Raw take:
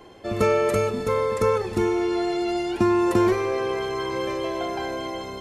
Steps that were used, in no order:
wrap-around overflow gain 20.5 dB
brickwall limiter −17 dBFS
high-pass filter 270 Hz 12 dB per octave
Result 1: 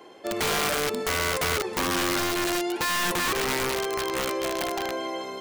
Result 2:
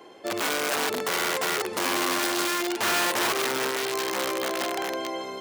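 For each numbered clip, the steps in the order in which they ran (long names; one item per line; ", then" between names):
high-pass filter, then brickwall limiter, then wrap-around overflow
brickwall limiter, then wrap-around overflow, then high-pass filter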